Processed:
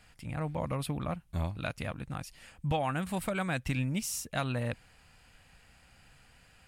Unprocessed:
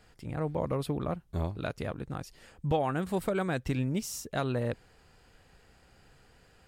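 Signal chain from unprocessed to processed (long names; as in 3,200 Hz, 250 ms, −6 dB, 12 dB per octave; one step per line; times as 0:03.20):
graphic EQ with 15 bands 400 Hz −11 dB, 2,500 Hz +6 dB, 10,000 Hz +6 dB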